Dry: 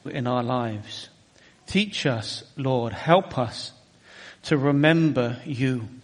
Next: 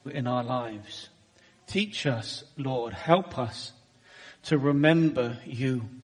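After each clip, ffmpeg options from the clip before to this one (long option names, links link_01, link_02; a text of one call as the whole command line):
ffmpeg -i in.wav -filter_complex "[0:a]asplit=2[link_01][link_02];[link_02]adelay=5,afreqshift=0.5[link_03];[link_01][link_03]amix=inputs=2:normalize=1,volume=-1.5dB" out.wav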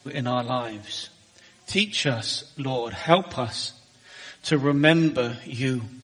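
ffmpeg -i in.wav -af "highshelf=frequency=2100:gain=8.5,volume=2dB" out.wav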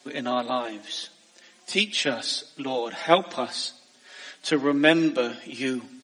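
ffmpeg -i in.wav -af "highpass=frequency=220:width=0.5412,highpass=frequency=220:width=1.3066" out.wav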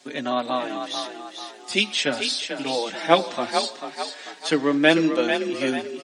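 ffmpeg -i in.wav -filter_complex "[0:a]asplit=6[link_01][link_02][link_03][link_04][link_05][link_06];[link_02]adelay=442,afreqshift=38,volume=-7dB[link_07];[link_03]adelay=884,afreqshift=76,volume=-14.5dB[link_08];[link_04]adelay=1326,afreqshift=114,volume=-22.1dB[link_09];[link_05]adelay=1768,afreqshift=152,volume=-29.6dB[link_10];[link_06]adelay=2210,afreqshift=190,volume=-37.1dB[link_11];[link_01][link_07][link_08][link_09][link_10][link_11]amix=inputs=6:normalize=0,volume=1.5dB" out.wav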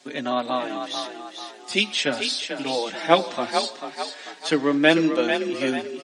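ffmpeg -i in.wav -af "highshelf=frequency=9200:gain=-3.5" out.wav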